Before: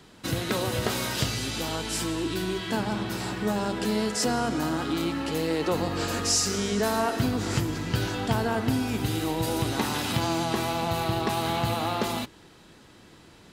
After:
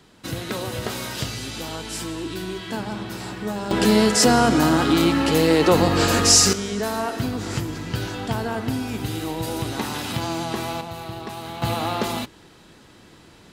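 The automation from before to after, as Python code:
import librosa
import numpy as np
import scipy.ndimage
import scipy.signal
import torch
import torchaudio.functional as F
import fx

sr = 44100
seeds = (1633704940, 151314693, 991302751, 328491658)

y = fx.gain(x, sr, db=fx.steps((0.0, -1.0), (3.71, 10.0), (6.53, 0.0), (10.81, -6.5), (11.62, 3.0)))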